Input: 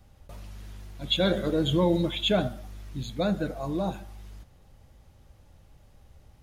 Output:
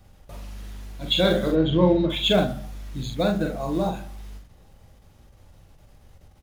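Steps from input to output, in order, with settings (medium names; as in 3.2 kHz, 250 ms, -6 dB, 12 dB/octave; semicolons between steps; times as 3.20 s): de-hum 69.35 Hz, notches 4; in parallel at -6 dB: short-mantissa float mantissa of 2-bit; 1.51–2.10 s: on the sum: distance through air 260 m; doubling 44 ms -4.5 dB; endings held to a fixed fall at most 120 dB/s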